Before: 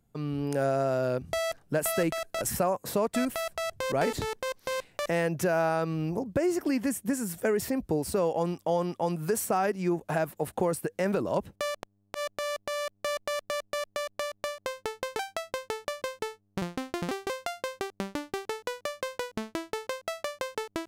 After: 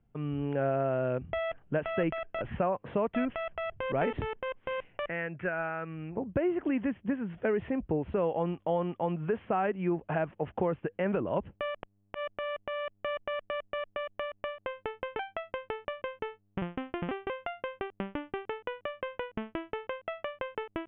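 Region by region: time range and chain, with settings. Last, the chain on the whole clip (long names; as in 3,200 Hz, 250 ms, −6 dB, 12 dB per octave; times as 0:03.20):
0:05.07–0:06.17: noise gate −25 dBFS, range −8 dB + flat-topped bell 1,800 Hz +9 dB 1.1 octaves
whole clip: Butterworth low-pass 3,200 Hz 96 dB per octave; low-shelf EQ 83 Hz +6 dB; level −2.5 dB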